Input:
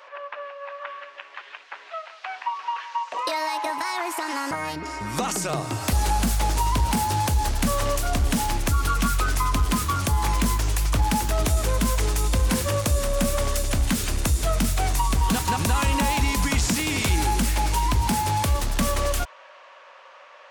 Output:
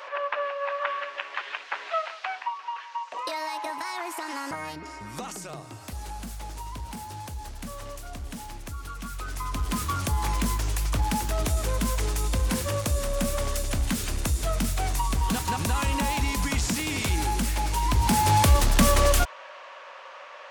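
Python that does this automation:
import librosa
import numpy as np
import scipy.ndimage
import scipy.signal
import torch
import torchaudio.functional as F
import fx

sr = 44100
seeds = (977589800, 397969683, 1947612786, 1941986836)

y = fx.gain(x, sr, db=fx.line((2.06, 6.5), (2.59, -5.5), (4.6, -5.5), (5.88, -15.0), (9.01, -15.0), (9.85, -4.0), (17.73, -4.0), (18.35, 4.0)))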